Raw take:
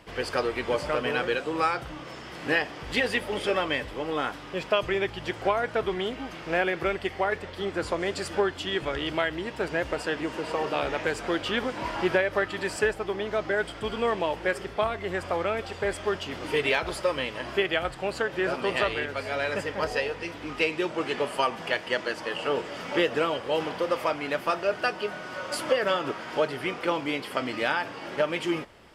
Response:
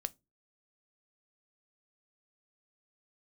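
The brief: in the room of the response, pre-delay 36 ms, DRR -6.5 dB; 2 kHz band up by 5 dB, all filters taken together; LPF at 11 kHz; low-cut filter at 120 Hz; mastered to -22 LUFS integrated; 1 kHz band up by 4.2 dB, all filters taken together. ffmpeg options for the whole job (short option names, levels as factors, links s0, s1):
-filter_complex "[0:a]highpass=120,lowpass=11000,equalizer=f=1000:t=o:g=4,equalizer=f=2000:t=o:g=5,asplit=2[s0][s1];[1:a]atrim=start_sample=2205,adelay=36[s2];[s1][s2]afir=irnorm=-1:irlink=0,volume=2.37[s3];[s0][s3]amix=inputs=2:normalize=0,volume=0.631"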